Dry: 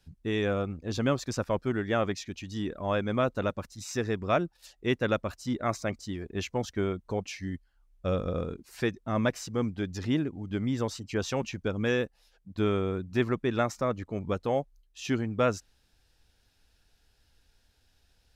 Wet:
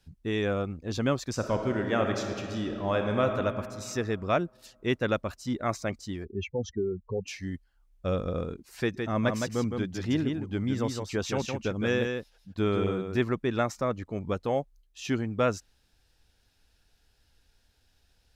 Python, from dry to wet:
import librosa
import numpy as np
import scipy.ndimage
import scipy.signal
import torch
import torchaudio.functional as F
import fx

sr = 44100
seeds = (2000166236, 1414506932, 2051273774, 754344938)

y = fx.reverb_throw(x, sr, start_s=1.31, length_s=1.93, rt60_s=2.5, drr_db=3.5)
y = fx.spec_expand(y, sr, power=2.7, at=(6.24, 7.26), fade=0.02)
y = fx.echo_single(y, sr, ms=163, db=-5.0, at=(8.81, 13.17))